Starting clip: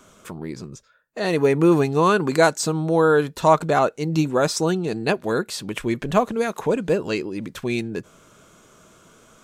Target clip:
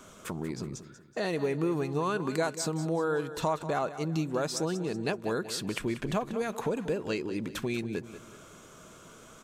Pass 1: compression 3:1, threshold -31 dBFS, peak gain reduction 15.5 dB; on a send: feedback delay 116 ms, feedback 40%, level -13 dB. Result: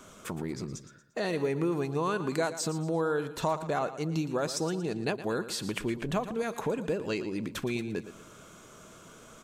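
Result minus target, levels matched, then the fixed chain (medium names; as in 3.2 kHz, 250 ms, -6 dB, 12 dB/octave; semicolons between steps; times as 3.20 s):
echo 72 ms early
compression 3:1, threshold -31 dBFS, peak gain reduction 15.5 dB; on a send: feedback delay 188 ms, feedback 40%, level -13 dB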